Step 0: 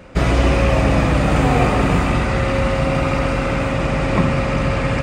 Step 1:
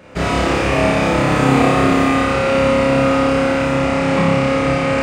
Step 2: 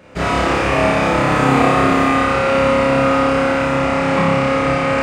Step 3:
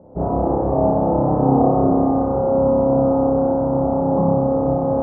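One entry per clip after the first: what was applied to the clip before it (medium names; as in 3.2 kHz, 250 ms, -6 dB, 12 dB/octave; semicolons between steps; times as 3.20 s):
high-pass 170 Hz 6 dB/octave; on a send: flutter echo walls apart 5.1 m, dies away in 1.1 s; on the sum: trim -1.5 dB
dynamic bell 1.2 kHz, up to +5 dB, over -27 dBFS, Q 0.72; trim -2 dB
elliptic low-pass 850 Hz, stop band 80 dB; reverse; upward compressor, threshold -26 dBFS; reverse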